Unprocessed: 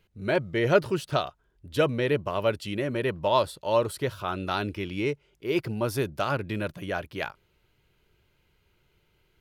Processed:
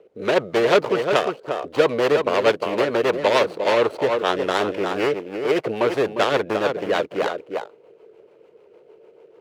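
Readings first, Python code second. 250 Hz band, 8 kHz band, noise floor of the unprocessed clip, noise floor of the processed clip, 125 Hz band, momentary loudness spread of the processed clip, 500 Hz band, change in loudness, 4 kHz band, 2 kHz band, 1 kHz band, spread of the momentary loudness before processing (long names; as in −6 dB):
+4.0 dB, +4.5 dB, −69 dBFS, −53 dBFS, −4.5 dB, 7 LU, +8.0 dB, +7.0 dB, +7.5 dB, +7.0 dB, +7.0 dB, 9 LU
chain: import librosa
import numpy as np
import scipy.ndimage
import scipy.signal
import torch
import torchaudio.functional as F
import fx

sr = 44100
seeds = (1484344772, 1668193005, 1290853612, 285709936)

y = scipy.ndimage.median_filter(x, 25, mode='constant')
y = fx.highpass_res(y, sr, hz=470.0, q=4.9)
y = y + 10.0 ** (-10.0 / 20.0) * np.pad(y, (int(353 * sr / 1000.0), 0))[:len(y)]
y = fx.rotary(y, sr, hz=6.7)
y = fx.lowpass(y, sr, hz=2700.0, slope=6)
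y = fx.spectral_comp(y, sr, ratio=2.0)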